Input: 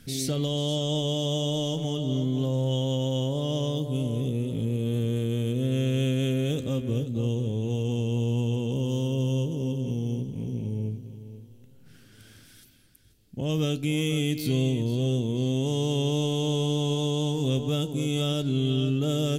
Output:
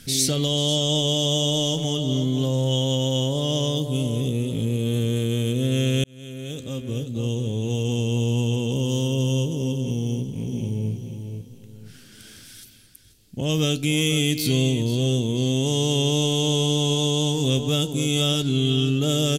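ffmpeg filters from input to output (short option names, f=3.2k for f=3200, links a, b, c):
-filter_complex "[0:a]asplit=2[a][b];[b]afade=t=in:st=10.02:d=0.01,afade=t=out:st=10.92:d=0.01,aecho=0:1:490|980|1470|1960:0.398107|0.119432|0.0358296|0.0107489[c];[a][c]amix=inputs=2:normalize=0,asettb=1/sr,asplit=3[d][e][f];[d]atrim=end=18.354[g];[e]atrim=start=18.35:end=18.95,asetpts=PTS-STARTPTS,afade=t=in:d=0.004:c=qsin,afade=t=out:st=0.596:d=0.004:c=qsin,bandreject=f=590:w=12[h];[f]atrim=start=18.946[i];[g][h]acrossfade=d=0.004:c1=hsin:c2=qsin[j];[j][i]acrossfade=d=0.004:c1=qsin:c2=hsin,asplit=2[k][l];[k]atrim=end=6.04,asetpts=PTS-STARTPTS,afade=t=out:st=6.036:d=0.004:c=hsin[m];[l]atrim=start=6.04,asetpts=PTS-STARTPTS,afade=t=in:d=2.21:c=qsin[n];[m][n]concat=n=2:v=0:a=1,equalizer=f=6.9k:w=0.34:g=8,volume=3.5dB"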